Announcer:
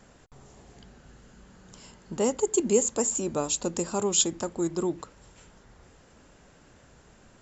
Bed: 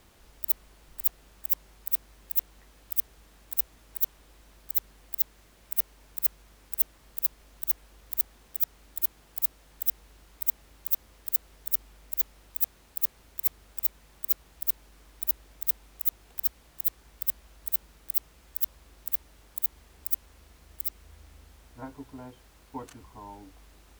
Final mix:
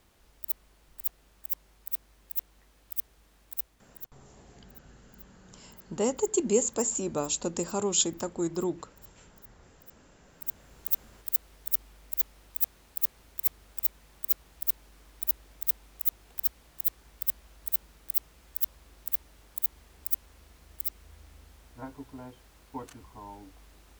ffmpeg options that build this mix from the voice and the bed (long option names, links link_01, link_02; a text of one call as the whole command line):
ffmpeg -i stem1.wav -i stem2.wav -filter_complex "[0:a]adelay=3800,volume=-2dB[link_01];[1:a]volume=20dB,afade=type=out:start_time=3.49:duration=0.69:silence=0.0944061,afade=type=in:start_time=10.21:duration=0.66:silence=0.0530884[link_02];[link_01][link_02]amix=inputs=2:normalize=0" out.wav